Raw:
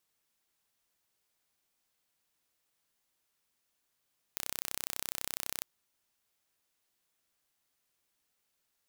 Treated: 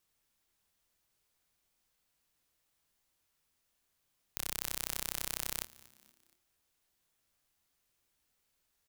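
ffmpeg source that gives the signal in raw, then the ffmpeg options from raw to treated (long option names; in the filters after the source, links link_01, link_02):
-f lavfi -i "aevalsrc='0.398*eq(mod(n,1378),0)':duration=1.26:sample_rate=44100"
-filter_complex "[0:a]lowshelf=frequency=100:gain=11,asplit=2[link_01][link_02];[link_02]adelay=25,volume=-9.5dB[link_03];[link_01][link_03]amix=inputs=2:normalize=0,asplit=4[link_04][link_05][link_06][link_07];[link_05]adelay=236,afreqshift=-120,volume=-22dB[link_08];[link_06]adelay=472,afreqshift=-240,volume=-28.2dB[link_09];[link_07]adelay=708,afreqshift=-360,volume=-34.4dB[link_10];[link_04][link_08][link_09][link_10]amix=inputs=4:normalize=0"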